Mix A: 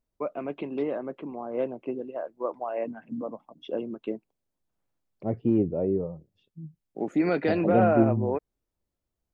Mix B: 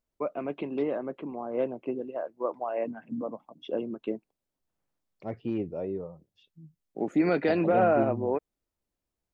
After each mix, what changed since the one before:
second voice: add tilt shelf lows -9.5 dB, about 1.1 kHz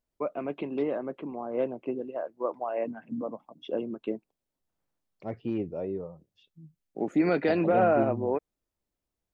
no change

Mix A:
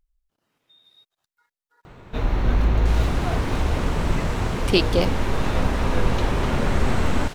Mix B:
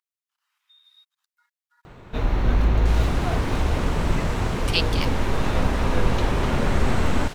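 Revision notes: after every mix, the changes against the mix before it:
speech: add steep high-pass 990 Hz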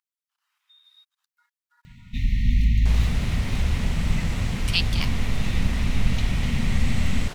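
first sound: add brick-wall FIR band-stop 260–1800 Hz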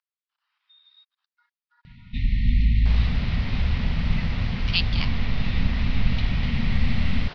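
second sound: add bass shelf 290 Hz -10.5 dB; master: add steep low-pass 5 kHz 48 dB/octave

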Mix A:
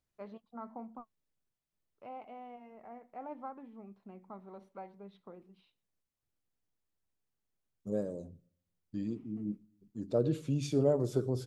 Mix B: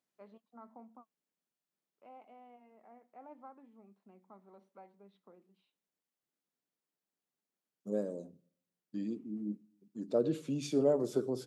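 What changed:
first voice -8.5 dB; master: add high-pass 180 Hz 24 dB/octave

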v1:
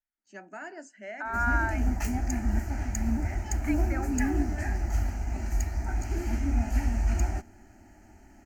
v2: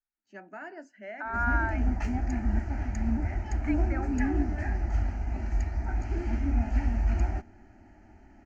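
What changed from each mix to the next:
master: add distance through air 180 m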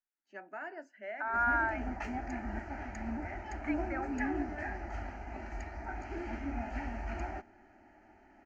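master: add tone controls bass -15 dB, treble -8 dB

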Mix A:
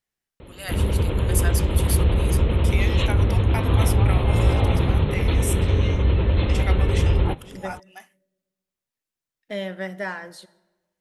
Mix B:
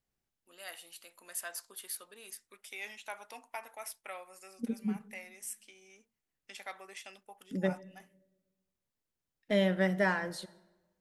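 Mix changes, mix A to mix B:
first voice -11.5 dB; background: muted; master: add bass shelf 280 Hz +6 dB

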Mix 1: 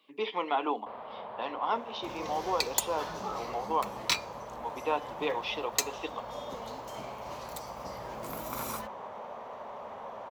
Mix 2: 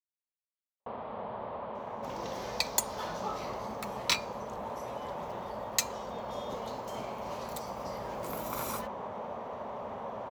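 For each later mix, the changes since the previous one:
speech: muted; first sound: add bass shelf 360 Hz +12 dB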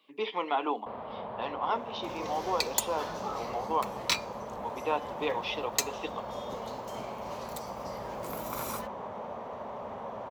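speech: unmuted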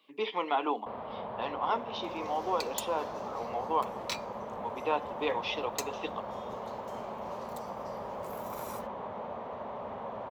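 second sound -8.5 dB

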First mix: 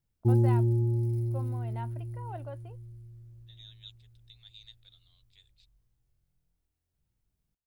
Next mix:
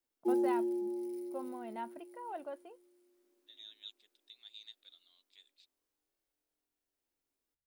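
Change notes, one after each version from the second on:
background: add steep high-pass 250 Hz 96 dB/octave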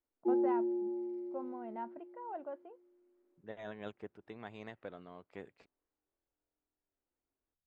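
second voice: remove band-pass filter 3.7 kHz, Q 9.6; master: add low-pass 1.5 kHz 12 dB/octave

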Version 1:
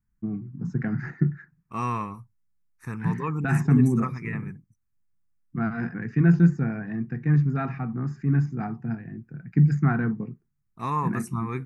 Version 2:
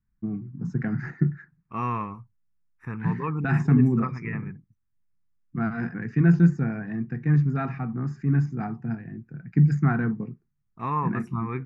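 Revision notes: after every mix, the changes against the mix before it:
second voice: add Savitzky-Golay filter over 25 samples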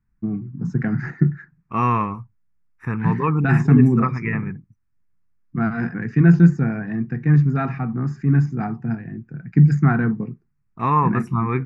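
first voice +5.5 dB; second voice +9.0 dB

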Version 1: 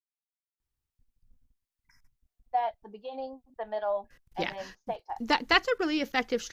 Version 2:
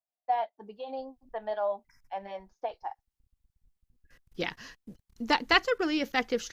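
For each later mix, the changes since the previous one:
first voice: entry -2.25 s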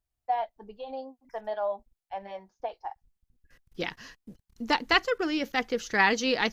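second voice: entry -0.60 s

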